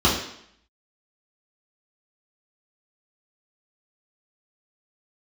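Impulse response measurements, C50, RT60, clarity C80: 4.5 dB, 0.70 s, 8.0 dB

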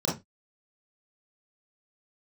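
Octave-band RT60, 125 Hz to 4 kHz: 0.30 s, 0.25 s, 0.20 s, 0.20 s, 0.20 s, 0.20 s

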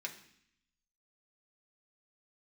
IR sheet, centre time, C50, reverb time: 13 ms, 11.0 dB, 0.65 s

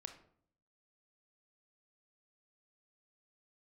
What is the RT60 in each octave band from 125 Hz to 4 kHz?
0.85 s, 0.80 s, 0.65 s, 0.55 s, 0.45 s, 0.35 s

